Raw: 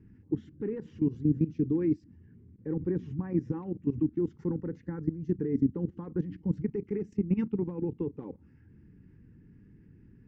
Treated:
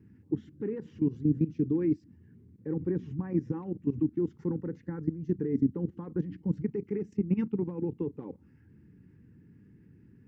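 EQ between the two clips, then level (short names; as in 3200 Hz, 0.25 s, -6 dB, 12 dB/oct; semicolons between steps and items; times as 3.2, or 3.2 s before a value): HPF 82 Hz; 0.0 dB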